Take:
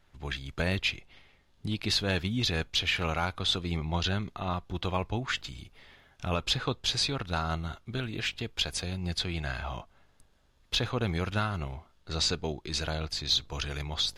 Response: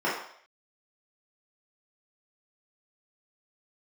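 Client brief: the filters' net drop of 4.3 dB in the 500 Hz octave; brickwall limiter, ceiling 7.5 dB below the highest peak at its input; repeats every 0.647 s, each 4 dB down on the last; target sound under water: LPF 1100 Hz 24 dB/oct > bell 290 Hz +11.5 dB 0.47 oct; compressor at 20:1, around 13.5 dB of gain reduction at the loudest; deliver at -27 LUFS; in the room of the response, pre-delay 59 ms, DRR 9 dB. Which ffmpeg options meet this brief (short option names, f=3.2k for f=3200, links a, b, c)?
-filter_complex "[0:a]equalizer=f=500:t=o:g=-8.5,acompressor=threshold=-37dB:ratio=20,alimiter=level_in=8.5dB:limit=-24dB:level=0:latency=1,volume=-8.5dB,aecho=1:1:647|1294|1941|2588|3235|3882|4529|5176|5823:0.631|0.398|0.25|0.158|0.0994|0.0626|0.0394|0.0249|0.0157,asplit=2[a][b];[1:a]atrim=start_sample=2205,adelay=59[c];[b][c]afir=irnorm=-1:irlink=0,volume=-22.5dB[d];[a][d]amix=inputs=2:normalize=0,lowpass=f=1.1k:w=0.5412,lowpass=f=1.1k:w=1.3066,equalizer=f=290:t=o:w=0.47:g=11.5,volume=15.5dB"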